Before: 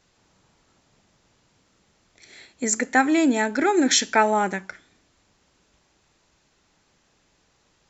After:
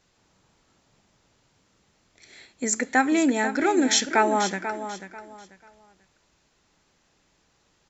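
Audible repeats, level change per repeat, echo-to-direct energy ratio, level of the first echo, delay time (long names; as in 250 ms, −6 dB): 3, −11.5 dB, −10.0 dB, −10.5 dB, 490 ms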